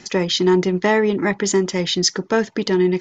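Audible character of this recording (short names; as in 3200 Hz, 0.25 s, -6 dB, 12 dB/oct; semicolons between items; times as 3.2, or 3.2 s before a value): noise floor -46 dBFS; spectral tilt -4.0 dB/oct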